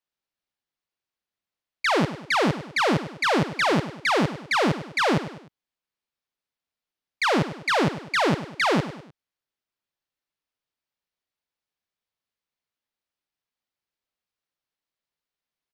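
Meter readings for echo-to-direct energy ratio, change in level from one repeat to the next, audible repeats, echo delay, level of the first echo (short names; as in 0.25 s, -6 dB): -12.0 dB, -7.5 dB, 3, 0.101 s, -13.0 dB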